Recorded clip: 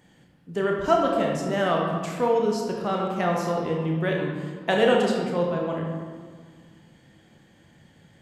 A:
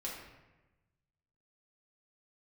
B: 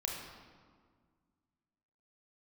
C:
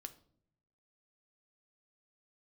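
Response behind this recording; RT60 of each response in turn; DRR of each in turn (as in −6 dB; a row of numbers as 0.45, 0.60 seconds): B; 1.1 s, 1.8 s, non-exponential decay; −5.0, −1.0, 8.5 decibels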